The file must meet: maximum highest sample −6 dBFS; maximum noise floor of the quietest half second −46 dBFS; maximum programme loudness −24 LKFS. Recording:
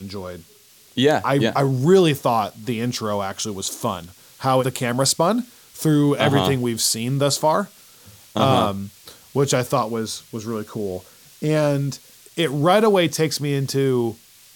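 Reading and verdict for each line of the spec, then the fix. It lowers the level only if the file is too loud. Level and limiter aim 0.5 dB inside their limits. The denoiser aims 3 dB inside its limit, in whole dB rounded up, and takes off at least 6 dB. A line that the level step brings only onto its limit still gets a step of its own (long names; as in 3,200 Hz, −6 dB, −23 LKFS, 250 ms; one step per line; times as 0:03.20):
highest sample −2.5 dBFS: out of spec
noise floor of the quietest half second −51 dBFS: in spec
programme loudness −20.5 LKFS: out of spec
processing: level −4 dB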